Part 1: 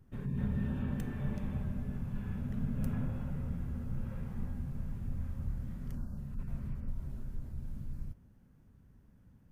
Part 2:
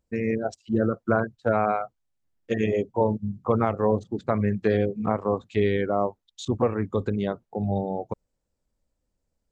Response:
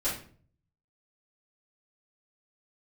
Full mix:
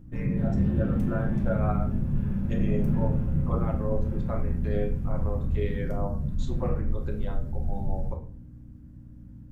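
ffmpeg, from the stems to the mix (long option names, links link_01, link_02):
-filter_complex "[0:a]asoftclip=type=hard:threshold=-32dB,aeval=exprs='val(0)+0.00251*(sin(2*PI*60*n/s)+sin(2*PI*2*60*n/s)/2+sin(2*PI*3*60*n/s)/3+sin(2*PI*4*60*n/s)/4+sin(2*PI*5*60*n/s)/5)':channel_layout=same,volume=-3.5dB,asplit=3[link_01][link_02][link_03];[link_02]volume=-5dB[link_04];[1:a]tremolo=f=4.8:d=0.55,highpass=490,volume=-2.5dB,asplit=2[link_05][link_06];[link_06]volume=-15dB[link_07];[link_03]apad=whole_len=419689[link_08];[link_05][link_08]sidechaincompress=threshold=-53dB:ratio=3:attack=16:release=390[link_09];[2:a]atrim=start_sample=2205[link_10];[link_04][link_07]amix=inputs=2:normalize=0[link_11];[link_11][link_10]afir=irnorm=-1:irlink=0[link_12];[link_01][link_09][link_12]amix=inputs=3:normalize=0,equalizer=frequency=130:width=0.42:gain=11.5"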